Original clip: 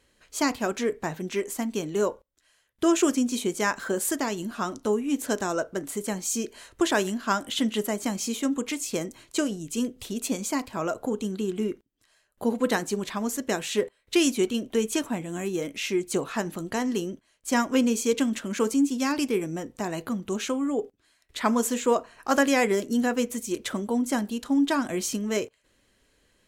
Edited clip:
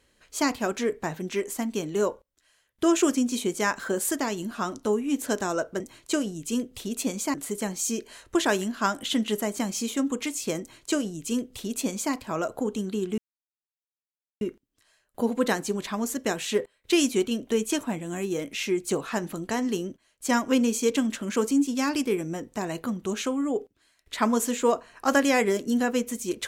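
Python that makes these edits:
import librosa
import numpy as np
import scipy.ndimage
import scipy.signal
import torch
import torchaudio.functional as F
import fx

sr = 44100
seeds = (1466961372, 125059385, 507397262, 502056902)

y = fx.edit(x, sr, fx.duplicate(start_s=9.05, length_s=1.54, to_s=5.8),
    fx.insert_silence(at_s=11.64, length_s=1.23), tone=tone)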